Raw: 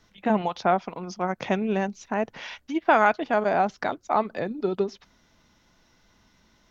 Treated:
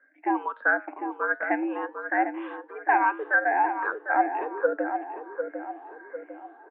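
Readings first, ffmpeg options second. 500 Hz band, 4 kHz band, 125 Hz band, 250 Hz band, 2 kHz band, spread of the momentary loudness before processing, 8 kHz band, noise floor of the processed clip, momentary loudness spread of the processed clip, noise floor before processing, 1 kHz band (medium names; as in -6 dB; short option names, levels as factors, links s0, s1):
-4.5 dB, under -15 dB, under -40 dB, -4.0 dB, +5.5 dB, 10 LU, no reading, -52 dBFS, 17 LU, -63 dBFS, +0.5 dB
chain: -filter_complex "[0:a]afftfilt=real='re*pow(10,18/40*sin(2*PI*(0.59*log(max(b,1)*sr/1024/100)/log(2)-(1.5)*(pts-256)/sr)))':imag='im*pow(10,18/40*sin(2*PI*(0.59*log(max(b,1)*sr/1024/100)/log(2)-(1.5)*(pts-256)/sr)))':win_size=1024:overlap=0.75,equalizer=f=1500:t=o:w=0.24:g=14.5,dynaudnorm=f=250:g=3:m=3.76,flanger=delay=5.6:depth=4.9:regen=85:speed=0.49:shape=triangular,asplit=2[s0][s1];[s1]adelay=750,lowpass=f=1300:p=1,volume=0.473,asplit=2[s2][s3];[s3]adelay=750,lowpass=f=1300:p=1,volume=0.49,asplit=2[s4][s5];[s5]adelay=750,lowpass=f=1300:p=1,volume=0.49,asplit=2[s6][s7];[s7]adelay=750,lowpass=f=1300:p=1,volume=0.49,asplit=2[s8][s9];[s9]adelay=750,lowpass=f=1300:p=1,volume=0.49,asplit=2[s10][s11];[s11]adelay=750,lowpass=f=1300:p=1,volume=0.49[s12];[s0][s2][s4][s6][s8][s10][s12]amix=inputs=7:normalize=0,highpass=f=180:t=q:w=0.5412,highpass=f=180:t=q:w=1.307,lowpass=f=2100:t=q:w=0.5176,lowpass=f=2100:t=q:w=0.7071,lowpass=f=2100:t=q:w=1.932,afreqshift=110,volume=0.562"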